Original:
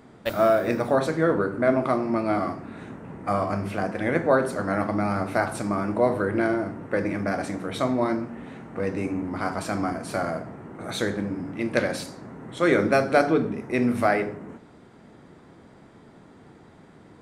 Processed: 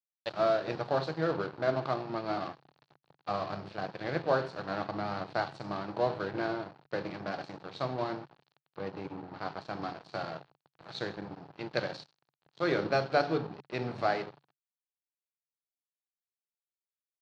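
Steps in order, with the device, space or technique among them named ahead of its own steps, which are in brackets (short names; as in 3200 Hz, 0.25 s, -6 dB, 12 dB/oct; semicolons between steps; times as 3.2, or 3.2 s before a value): blown loudspeaker (crossover distortion -32.5 dBFS; speaker cabinet 120–5300 Hz, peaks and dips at 140 Hz +9 dB, 240 Hz -10 dB, 810 Hz +4 dB, 2100 Hz -5 dB, 4300 Hz +10 dB); 8.73–9.82 high shelf 4100 Hz -7 dB; gain -7 dB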